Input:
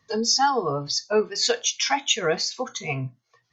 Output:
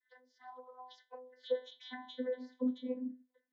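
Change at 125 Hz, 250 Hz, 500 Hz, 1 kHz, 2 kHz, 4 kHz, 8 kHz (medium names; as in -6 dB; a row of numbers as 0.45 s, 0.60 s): under -35 dB, -6.5 dB, -15.0 dB, -27.5 dB, -25.0 dB, -29.0 dB, no reading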